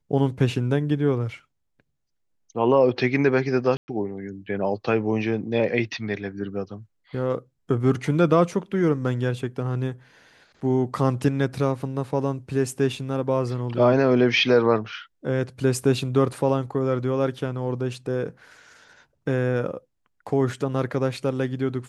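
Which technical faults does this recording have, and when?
3.77–3.88 s: dropout 110 ms

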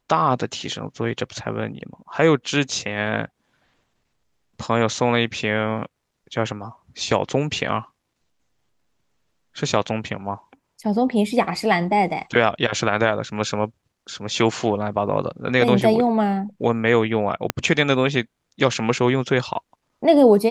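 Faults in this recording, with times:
17.50 s: pop -4 dBFS

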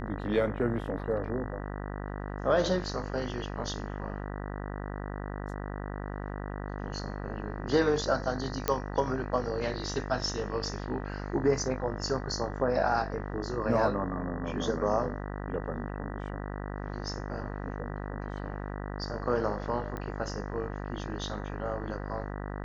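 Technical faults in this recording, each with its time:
buzz 50 Hz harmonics 39 -37 dBFS
8.68 s: pop -10 dBFS
19.97 s: pop -24 dBFS

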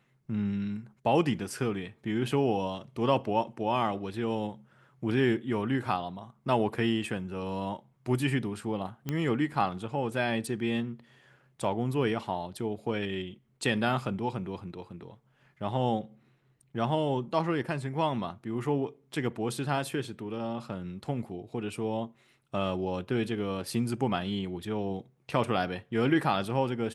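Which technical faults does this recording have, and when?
9.09 s: pop -18 dBFS

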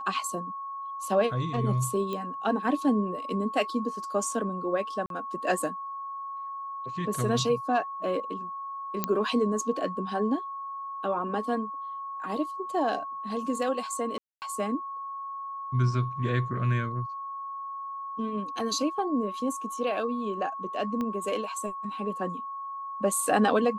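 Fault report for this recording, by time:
whine 1.1 kHz -34 dBFS
2.13 s: pop -21 dBFS
5.06–5.10 s: dropout 42 ms
9.04 s: pop -10 dBFS
14.18–14.42 s: dropout 239 ms
21.01 s: pop -20 dBFS

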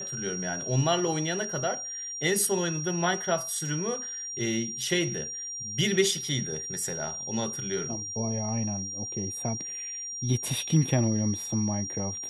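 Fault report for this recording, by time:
whine 5.7 kHz -34 dBFS

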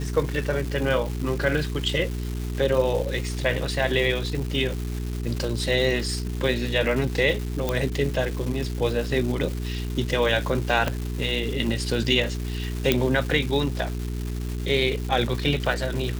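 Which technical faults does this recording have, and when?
crackle 590 per s -30 dBFS
hum 60 Hz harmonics 7 -29 dBFS
7.69 s: pop -10 dBFS
10.88 s: pop -10 dBFS
12.92 s: pop -4 dBFS

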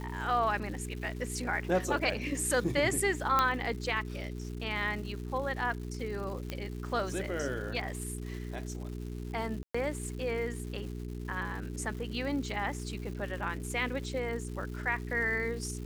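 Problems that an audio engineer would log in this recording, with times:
crackle 350 per s -42 dBFS
hum 60 Hz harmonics 7 -39 dBFS
3.39 s: pop -12 dBFS
6.50 s: pop -21 dBFS
9.63–9.74 s: dropout 115 ms

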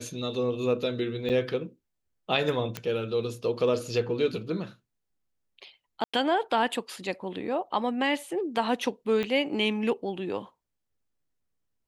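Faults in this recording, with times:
1.29–1.30 s: dropout 8.3 ms
2.77 s: pop -16 dBFS
6.04–6.13 s: dropout 95 ms
9.23 s: pop -18 dBFS

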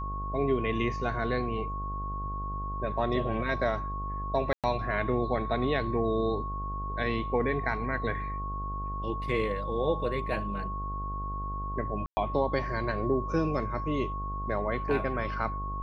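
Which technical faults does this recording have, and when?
buzz 50 Hz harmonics 17 -36 dBFS
whine 1.1 kHz -35 dBFS
4.53–4.64 s: dropout 107 ms
12.06–12.17 s: dropout 110 ms

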